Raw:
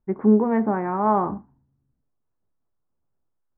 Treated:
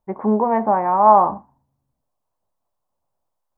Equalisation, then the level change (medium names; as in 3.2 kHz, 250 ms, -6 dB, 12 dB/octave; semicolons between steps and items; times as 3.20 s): high-order bell 760 Hz +12 dB 1.3 oct; treble shelf 2.1 kHz +9.5 dB; -3.0 dB